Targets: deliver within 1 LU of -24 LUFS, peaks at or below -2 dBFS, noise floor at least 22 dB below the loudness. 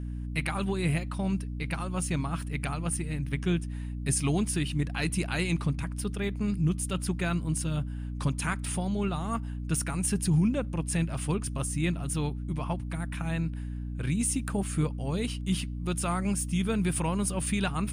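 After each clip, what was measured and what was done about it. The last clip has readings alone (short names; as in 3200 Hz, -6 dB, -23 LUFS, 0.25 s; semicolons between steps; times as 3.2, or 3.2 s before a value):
hum 60 Hz; harmonics up to 300 Hz; hum level -32 dBFS; loudness -30.5 LUFS; peak -16.5 dBFS; loudness target -24.0 LUFS
-> de-hum 60 Hz, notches 5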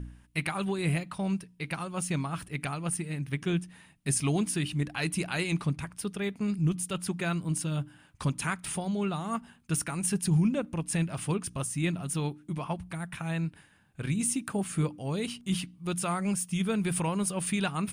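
hum none; loudness -31.5 LUFS; peak -16.5 dBFS; loudness target -24.0 LUFS
-> gain +7.5 dB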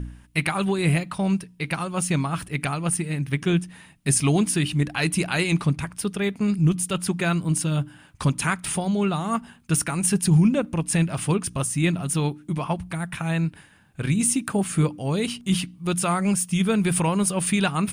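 loudness -24.0 LUFS; peak -9.0 dBFS; noise floor -52 dBFS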